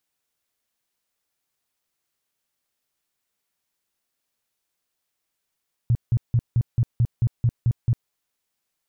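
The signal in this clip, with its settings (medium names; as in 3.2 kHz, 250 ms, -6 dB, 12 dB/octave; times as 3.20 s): tone bursts 118 Hz, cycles 6, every 0.22 s, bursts 10, -15 dBFS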